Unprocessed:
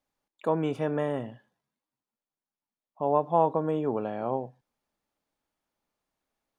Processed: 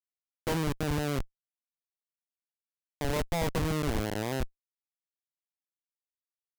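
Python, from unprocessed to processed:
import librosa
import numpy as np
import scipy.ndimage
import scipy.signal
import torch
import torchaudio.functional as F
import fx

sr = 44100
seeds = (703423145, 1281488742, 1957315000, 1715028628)

y = fx.rev_spring(x, sr, rt60_s=1.0, pass_ms=(31,), chirp_ms=65, drr_db=16.5)
y = fx.schmitt(y, sr, flips_db=-26.0)
y = F.gain(torch.from_numpy(y), 4.0).numpy()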